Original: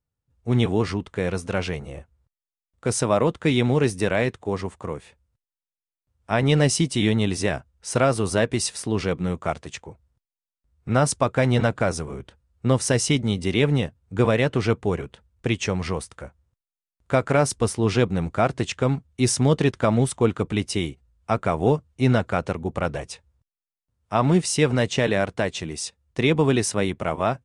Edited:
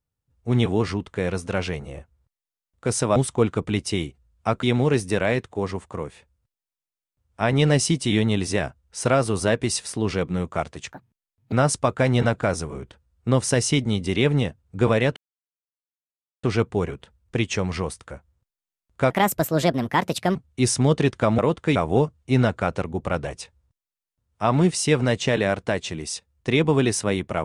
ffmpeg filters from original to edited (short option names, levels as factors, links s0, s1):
-filter_complex "[0:a]asplit=10[s0][s1][s2][s3][s4][s5][s6][s7][s8][s9];[s0]atrim=end=3.162[s10];[s1]atrim=start=19.988:end=21.462[s11];[s2]atrim=start=3.528:end=9.824[s12];[s3]atrim=start=9.82:end=10.9,asetpts=PTS-STARTPTS,asetrate=78939,aresample=44100[s13];[s4]atrim=start=10.896:end=14.54,asetpts=PTS-STARTPTS,afade=t=out:st=3.64:d=0.004:c=hsin,apad=pad_dur=1.27[s14];[s5]atrim=start=14.54:end=17.214,asetpts=PTS-STARTPTS,afade=t=in:d=0.004:c=hsin[s15];[s6]atrim=start=17.21:end=18.96,asetpts=PTS-STARTPTS,asetrate=61740,aresample=44100[s16];[s7]atrim=start=18.956:end=19.992[s17];[s8]atrim=start=3.158:end=3.532[s18];[s9]atrim=start=21.458[s19];[s10][s11]acrossfade=d=0.004:c1=hsin:c2=hsin[s20];[s20][s12]acrossfade=d=0.004:c1=hsin:c2=hsin[s21];[s21][s13]acrossfade=d=0.004:c1=hsin:c2=hsin[s22];[s14][s15]concat=n=2:v=0:a=1[s23];[s22][s23]acrossfade=d=0.004:c1=hsin:c2=hsin[s24];[s24][s16]acrossfade=d=0.004:c1=hsin:c2=hsin[s25];[s25][s17]acrossfade=d=0.004:c1=hsin:c2=hsin[s26];[s26][s18]acrossfade=d=0.004:c1=hsin:c2=hsin[s27];[s27][s19]acrossfade=d=0.004:c1=hsin:c2=hsin"